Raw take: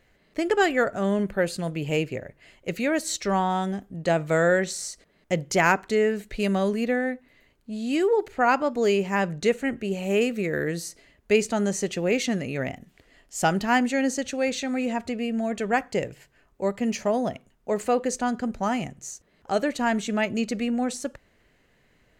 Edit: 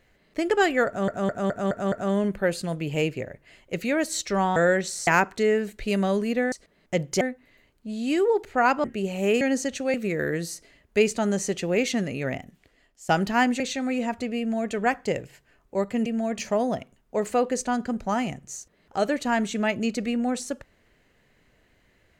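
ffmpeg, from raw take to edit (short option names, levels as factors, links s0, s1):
-filter_complex "[0:a]asplit=17[s0][s1][s2][s3][s4][s5][s6][s7][s8][s9][s10][s11][s12][s13][s14][s15][s16];[s0]atrim=end=1.082[s17];[s1]atrim=start=0.868:end=1.082[s18];[s2]atrim=start=0.868:end=1.082[s19];[s3]atrim=start=0.868:end=1.082[s20];[s4]atrim=start=0.868:end=1.082[s21];[s5]atrim=start=0.868:end=3.512[s22];[s6]atrim=start=4.388:end=4.902[s23];[s7]atrim=start=5.588:end=7.042[s24];[s8]atrim=start=4.898:end=5.592[s25];[s9]atrim=start=7.038:end=8.672[s26];[s10]atrim=start=9.708:end=10.282[s27];[s11]atrim=start=13.938:end=14.472[s28];[s12]atrim=start=10.278:end=13.43,asetpts=PTS-STARTPTS,afade=t=out:st=2.432:d=0.72:silence=0.177828[s29];[s13]atrim=start=13.43:end=13.942,asetpts=PTS-STARTPTS,afade=t=in:d=0.004:c=hsin:silence=0.177828[s30];[s14]atrim=start=14.468:end=16.932[s31];[s15]atrim=start=15.258:end=15.592[s32];[s16]atrim=start=16.928[s33];[s17][s18]acrossfade=d=0.004:c1=hsin:c2=hsin[s34];[s34][s19]acrossfade=d=0.004:c1=hsin:c2=hsin[s35];[s35][s20]acrossfade=d=0.004:c1=hsin:c2=hsin[s36];[s36][s21]acrossfade=d=0.004:c1=hsin:c2=hsin[s37];[s37][s22]acrossfade=d=0.004:c1=hsin:c2=hsin[s38];[s38][s23]acrossfade=d=0.004:c1=hsin:c2=hsin[s39];[s39][s24]acrossfade=d=0.004:c1=hsin:c2=hsin[s40];[s40][s25]acrossfade=d=0.004:c1=hsin:c2=hsin[s41];[s41][s26]acrossfade=d=0.004:c1=hsin:c2=hsin[s42];[s42][s27]acrossfade=d=0.004:c1=hsin:c2=hsin[s43];[s43][s28]acrossfade=d=0.004:c1=hsin:c2=hsin[s44];[s29][s30]concat=n=2:v=0:a=1[s45];[s44][s45]acrossfade=d=0.004:c1=hsin:c2=hsin[s46];[s46][s31]acrossfade=d=0.004:c1=hsin:c2=hsin[s47];[s47][s32]acrossfade=d=0.004:c1=hsin:c2=hsin[s48];[s48][s33]acrossfade=d=0.004:c1=hsin:c2=hsin"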